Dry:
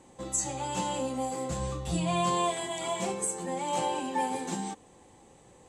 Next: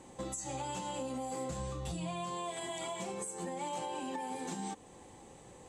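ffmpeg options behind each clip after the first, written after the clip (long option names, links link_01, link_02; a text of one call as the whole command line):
ffmpeg -i in.wav -af "acompressor=threshold=-33dB:ratio=6,alimiter=level_in=8dB:limit=-24dB:level=0:latency=1:release=281,volume=-8dB,volume=2dB" out.wav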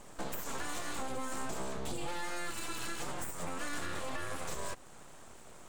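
ffmpeg -i in.wav -af "aeval=exprs='abs(val(0))':channel_layout=same,volume=3.5dB" out.wav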